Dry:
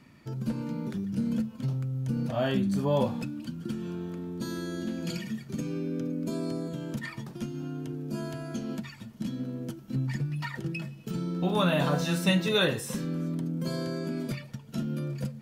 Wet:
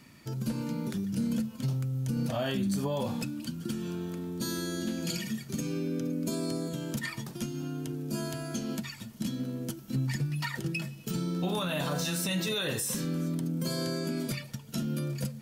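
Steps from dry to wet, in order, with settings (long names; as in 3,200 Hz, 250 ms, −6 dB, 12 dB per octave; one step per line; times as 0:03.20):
high-shelf EQ 3,900 Hz +12 dB
brickwall limiter −22.5 dBFS, peak gain reduction 12.5 dB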